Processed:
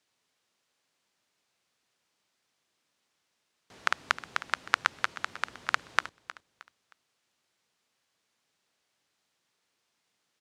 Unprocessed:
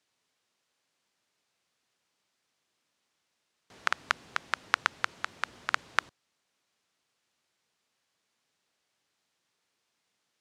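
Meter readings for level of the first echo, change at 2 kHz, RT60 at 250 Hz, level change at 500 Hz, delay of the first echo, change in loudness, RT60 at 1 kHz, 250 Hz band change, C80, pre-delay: -16.0 dB, +1.0 dB, no reverb, +1.0 dB, 312 ms, +1.0 dB, no reverb, +1.0 dB, no reverb, no reverb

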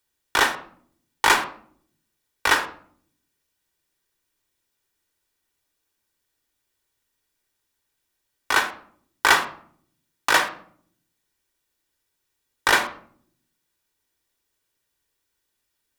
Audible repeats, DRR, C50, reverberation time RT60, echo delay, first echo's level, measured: no echo, 5.0 dB, 12.5 dB, 0.55 s, no echo, no echo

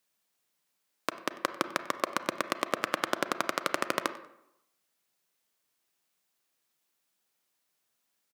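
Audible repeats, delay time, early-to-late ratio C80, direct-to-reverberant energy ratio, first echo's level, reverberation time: 2, 95 ms, 14.5 dB, 10.5 dB, -20.5 dB, 0.85 s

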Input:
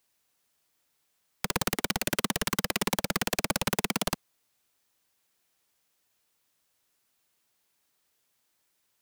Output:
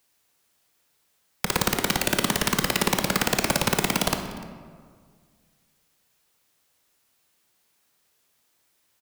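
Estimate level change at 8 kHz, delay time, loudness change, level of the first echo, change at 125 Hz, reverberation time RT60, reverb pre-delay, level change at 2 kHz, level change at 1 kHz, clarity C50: +5.5 dB, 298 ms, +5.5 dB, -21.5 dB, +6.5 dB, 1.8 s, 20 ms, +6.0 dB, +6.0 dB, 7.0 dB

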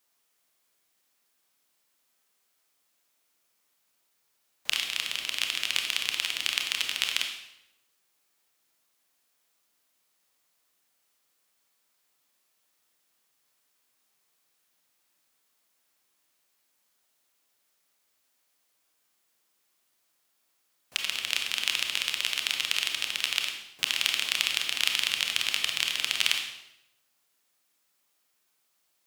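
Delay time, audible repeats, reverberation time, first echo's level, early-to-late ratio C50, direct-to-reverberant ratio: no echo, no echo, 0.85 s, no echo, 5.5 dB, 3.0 dB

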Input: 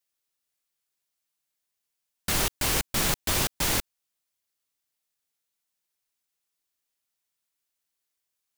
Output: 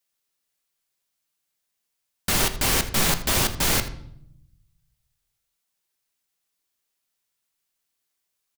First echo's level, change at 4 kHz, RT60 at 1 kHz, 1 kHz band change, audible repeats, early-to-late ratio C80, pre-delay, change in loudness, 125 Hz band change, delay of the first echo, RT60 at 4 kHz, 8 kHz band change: -17.0 dB, +4.0 dB, 0.65 s, +4.0 dB, 1, 14.0 dB, 4 ms, +3.5 dB, +4.5 dB, 81 ms, 0.55 s, +3.5 dB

